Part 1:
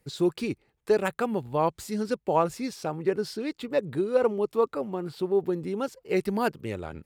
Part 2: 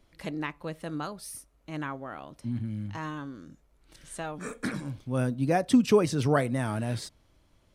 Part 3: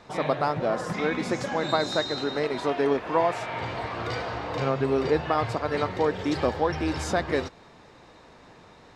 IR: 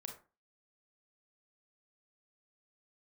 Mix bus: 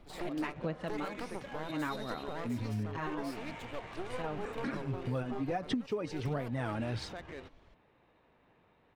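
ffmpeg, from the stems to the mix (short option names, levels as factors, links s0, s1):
-filter_complex "[0:a]highpass=310,alimiter=limit=0.1:level=0:latency=1:release=90,aeval=exprs='max(val(0),0)':c=same,volume=0.422,asplit=2[s0][s1];[1:a]lowpass=4100,aphaser=in_gain=1:out_gain=1:delay=3.7:decay=0.49:speed=1.4:type=sinusoidal,volume=1.06[s2];[2:a]firequalizer=gain_entry='entry(1300,0);entry(2800,8);entry(4600,-1)':delay=0.05:min_phase=1,alimiter=limit=0.119:level=0:latency=1:release=93,adynamicsmooth=sensitivity=5.5:basefreq=2200,volume=0.168[s3];[s1]apad=whole_len=341375[s4];[s2][s4]sidechaincompress=threshold=0.01:ratio=8:attack=16:release=282[s5];[s0][s5][s3]amix=inputs=3:normalize=0,acompressor=threshold=0.0282:ratio=10"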